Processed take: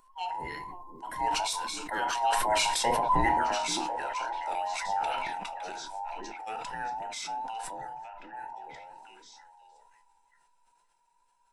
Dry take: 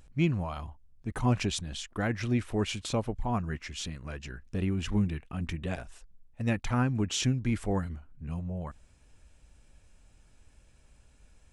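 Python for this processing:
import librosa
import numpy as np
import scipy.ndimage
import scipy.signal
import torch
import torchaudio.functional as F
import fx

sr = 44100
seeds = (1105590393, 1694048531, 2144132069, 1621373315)

p1 = fx.band_invert(x, sr, width_hz=1000)
p2 = fx.doppler_pass(p1, sr, speed_mps=13, closest_m=9.5, pass_at_s=3.19)
p3 = fx.peak_eq(p2, sr, hz=1500.0, db=6.5, octaves=0.6)
p4 = fx.notch(p3, sr, hz=6700.0, q=14.0)
p5 = p4 + fx.echo_stepped(p4, sr, ms=524, hz=270.0, octaves=1.4, feedback_pct=70, wet_db=-4.0, dry=0)
p6 = fx.room_shoebox(p5, sr, seeds[0], volume_m3=170.0, walls='furnished', distance_m=0.78)
p7 = fx.wow_flutter(p6, sr, seeds[1], rate_hz=2.1, depth_cents=27.0)
p8 = fx.high_shelf(p7, sr, hz=3500.0, db=11.0)
y = fx.sustainer(p8, sr, db_per_s=20.0)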